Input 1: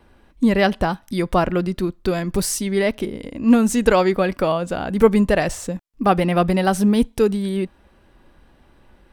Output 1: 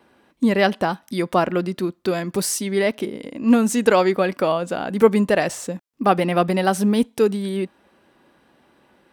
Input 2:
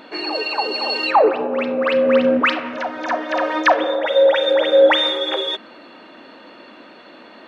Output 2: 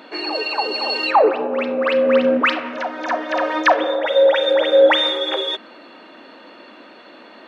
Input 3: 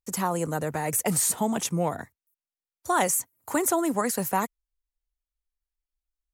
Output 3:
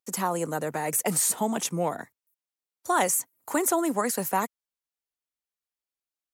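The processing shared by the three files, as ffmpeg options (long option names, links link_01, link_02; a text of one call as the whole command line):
ffmpeg -i in.wav -af "highpass=190" out.wav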